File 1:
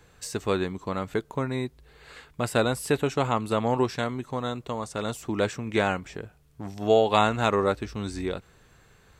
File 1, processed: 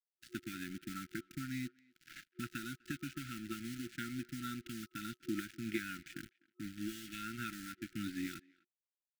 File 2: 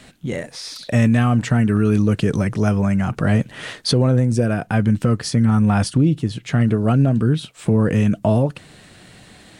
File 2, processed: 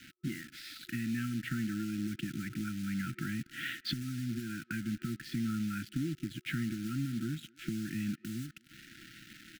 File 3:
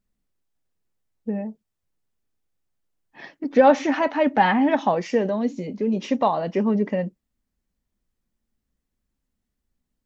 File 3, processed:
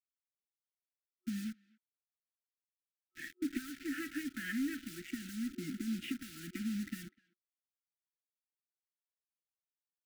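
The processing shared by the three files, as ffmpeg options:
-filter_complex "[0:a]highpass=f=140:w=0.5412,highpass=f=140:w=1.3066,equalizer=f=180:t=q:w=4:g=-6,equalizer=f=540:t=q:w=4:g=9,equalizer=f=880:t=q:w=4:g=-3,lowpass=f=3300:w=0.5412,lowpass=f=3300:w=1.3066,acompressor=threshold=0.0447:ratio=8,acrusher=bits=4:mode=log:mix=0:aa=0.000001,asoftclip=type=tanh:threshold=0.141,acrusher=bits=6:mix=0:aa=0.5,asplit=2[s0][s1];[s1]adelay=250,highpass=300,lowpass=3400,asoftclip=type=hard:threshold=0.0473,volume=0.0631[s2];[s0][s2]amix=inputs=2:normalize=0,afftfilt=real='re*(1-between(b*sr/4096,360,1300))':imag='im*(1-between(b*sr/4096,360,1300))':win_size=4096:overlap=0.75,volume=0.631"

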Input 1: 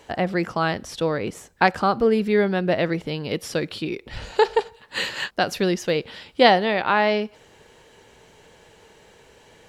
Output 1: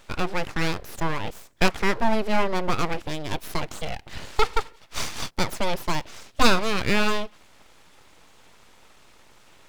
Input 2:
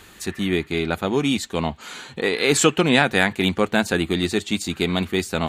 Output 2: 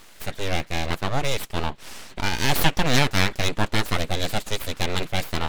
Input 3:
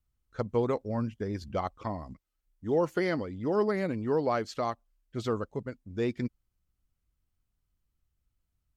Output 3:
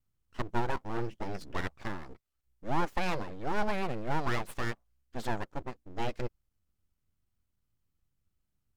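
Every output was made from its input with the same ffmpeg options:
-af "aeval=exprs='abs(val(0))':c=same"

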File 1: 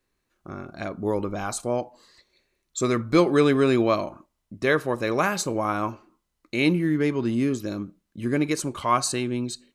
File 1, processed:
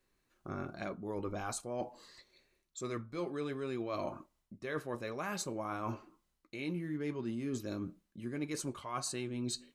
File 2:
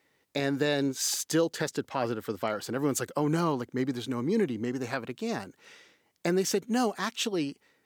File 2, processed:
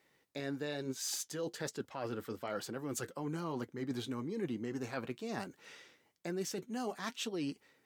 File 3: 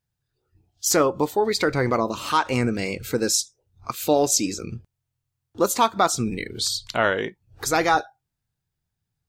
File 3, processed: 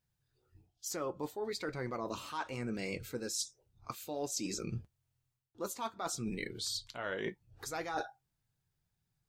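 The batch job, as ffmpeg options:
-af "areverse,acompressor=threshold=0.0224:ratio=16,areverse,flanger=delay=5.2:depth=2.6:regen=-62:speed=1.1:shape=sinusoidal,volume=1.33"

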